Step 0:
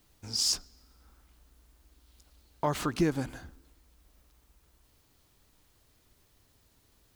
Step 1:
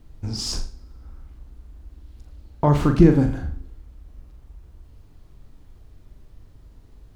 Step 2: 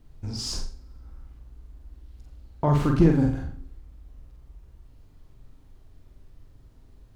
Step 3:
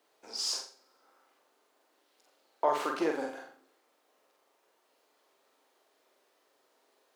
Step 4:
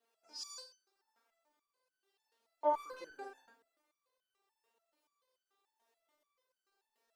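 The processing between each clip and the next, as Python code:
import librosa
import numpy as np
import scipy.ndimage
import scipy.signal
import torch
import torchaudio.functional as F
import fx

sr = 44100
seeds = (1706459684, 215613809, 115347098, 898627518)

y1 = fx.tilt_eq(x, sr, slope=-3.5)
y1 = fx.room_flutter(y1, sr, wall_m=7.1, rt60_s=0.38)
y1 = y1 * librosa.db_to_amplitude(6.0)
y2 = np.clip(y1, -10.0 ** (-3.5 / 20.0), 10.0 ** (-3.5 / 20.0))
y2 = fx.doubler(y2, sr, ms=49.0, db=-5)
y2 = y2 * librosa.db_to_amplitude(-5.0)
y3 = scipy.signal.sosfilt(scipy.signal.butter(4, 460.0, 'highpass', fs=sr, output='sos'), y2)
y4 = fx.buffer_crackle(y3, sr, first_s=0.76, period_s=0.18, block=512, kind='zero')
y4 = fx.resonator_held(y4, sr, hz=6.9, low_hz=230.0, high_hz=1500.0)
y4 = y4 * librosa.db_to_amplitude(4.5)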